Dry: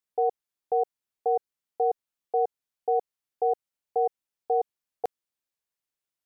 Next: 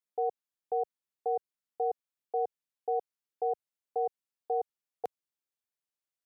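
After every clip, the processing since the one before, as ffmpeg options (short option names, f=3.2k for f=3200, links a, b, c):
-af "highpass=86,volume=-6dB"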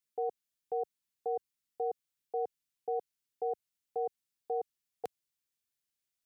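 -af "equalizer=f=730:w=0.59:g=-10.5,volume=5.5dB"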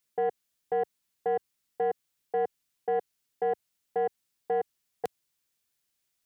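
-af "asoftclip=type=tanh:threshold=-29dB,volume=8.5dB"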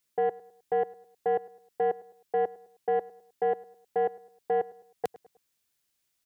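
-filter_complex "[0:a]asplit=2[a][b];[b]adelay=104,lowpass=f=2.3k:p=1,volume=-20dB,asplit=2[c][d];[d]adelay=104,lowpass=f=2.3k:p=1,volume=0.42,asplit=2[e][f];[f]adelay=104,lowpass=f=2.3k:p=1,volume=0.42[g];[a][c][e][g]amix=inputs=4:normalize=0,volume=1.5dB"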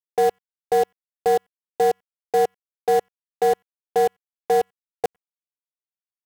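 -af "acrusher=bits=5:mix=0:aa=0.5,volume=8dB"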